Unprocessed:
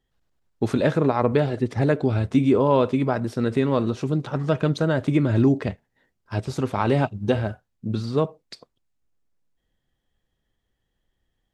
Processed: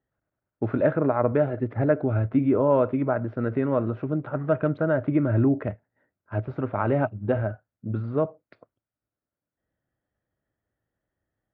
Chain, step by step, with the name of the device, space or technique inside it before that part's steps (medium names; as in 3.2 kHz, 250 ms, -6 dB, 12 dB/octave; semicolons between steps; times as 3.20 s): bass cabinet (cabinet simulation 66–2200 Hz, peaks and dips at 110 Hz +6 dB, 300 Hz +5 dB, 610 Hz +9 dB, 1.4 kHz +7 dB); trim -6 dB